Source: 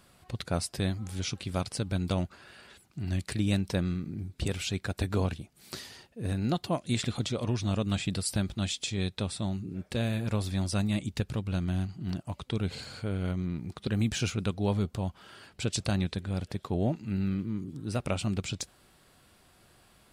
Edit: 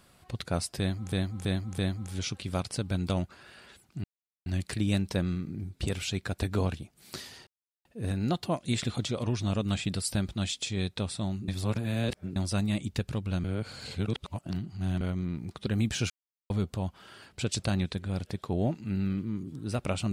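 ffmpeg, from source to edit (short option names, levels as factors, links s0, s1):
-filter_complex "[0:a]asplit=12[s0][s1][s2][s3][s4][s5][s6][s7][s8][s9][s10][s11];[s0]atrim=end=1.122[s12];[s1]atrim=start=0.788:end=1.122[s13];[s2]atrim=start=0.788:end=1.122[s14];[s3]atrim=start=0.788:end=3.05,asetpts=PTS-STARTPTS,afade=t=out:st=2.258:d=0.004:c=hsin,apad=pad_dur=0.42[s15];[s4]atrim=start=3.05:end=6.06,asetpts=PTS-STARTPTS,afade=t=in:d=0.004:c=hsin,afade=t=out:st=3.006:d=0.004:c=hsin,apad=pad_dur=0.38[s16];[s5]atrim=start=6.06:end=9.692,asetpts=PTS-STARTPTS,afade=t=in:d=0.004:c=hsin[s17];[s6]atrim=start=9.688:end=10.572,asetpts=PTS-STARTPTS,areverse[s18];[s7]atrim=start=10.568:end=11.652[s19];[s8]atrim=start=11.648:end=13.222,asetpts=PTS-STARTPTS,areverse[s20];[s9]atrim=start=13.218:end=14.31,asetpts=PTS-STARTPTS,afade=t=out:st=1.088:d=0.004:c=hsin[s21];[s10]atrim=start=14.31:end=14.71,asetpts=PTS-STARTPTS,volume=0[s22];[s11]atrim=start=14.71,asetpts=PTS-STARTPTS,afade=t=in:d=0.004:c=hsin[s23];[s12][s13]acrossfade=d=0.004:c1=hsin:c2=hsin[s24];[s24][s14]acrossfade=d=0.004:c1=hsin:c2=hsin[s25];[s15][s16][s17]concat=n=3:v=0:a=1[s26];[s25][s26]acrossfade=d=0.004:c1=hsin:c2=hsin[s27];[s27][s18]acrossfade=d=0.004:c1=hsin:c2=hsin[s28];[s28][s19]acrossfade=d=0.004:c1=hsin:c2=hsin[s29];[s29][s20]acrossfade=d=0.004:c1=hsin:c2=hsin[s30];[s21][s22][s23]concat=n=3:v=0:a=1[s31];[s30][s31]acrossfade=d=0.004:c1=hsin:c2=hsin"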